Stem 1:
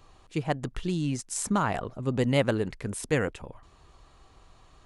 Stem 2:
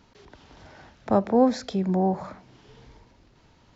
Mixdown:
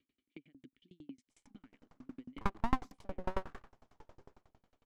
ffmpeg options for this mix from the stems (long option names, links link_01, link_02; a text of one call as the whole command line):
ffmpeg -i stem1.wav -i stem2.wav -filter_complex "[0:a]acompressor=threshold=-33dB:ratio=4,asplit=3[link_01][link_02][link_03];[link_01]bandpass=frequency=270:width_type=q:width=8,volume=0dB[link_04];[link_02]bandpass=frequency=2290:width_type=q:width=8,volume=-6dB[link_05];[link_03]bandpass=frequency=3010:width_type=q:width=8,volume=-9dB[link_06];[link_04][link_05][link_06]amix=inputs=3:normalize=0,volume=-1dB[link_07];[1:a]equalizer=frequency=125:width_type=o:width=1:gain=-5,equalizer=frequency=500:width_type=o:width=1:gain=9,equalizer=frequency=2000:width_type=o:width=1:gain=-10,equalizer=frequency=4000:width_type=o:width=1:gain=-9,dynaudnorm=framelen=130:gausssize=9:maxgain=11dB,aeval=exprs='abs(val(0))':channel_layout=same,adelay=1300,volume=-11.5dB[link_08];[link_07][link_08]amix=inputs=2:normalize=0,aeval=exprs='val(0)*pow(10,-35*if(lt(mod(11*n/s,1),2*abs(11)/1000),1-mod(11*n/s,1)/(2*abs(11)/1000),(mod(11*n/s,1)-2*abs(11)/1000)/(1-2*abs(11)/1000))/20)':channel_layout=same" out.wav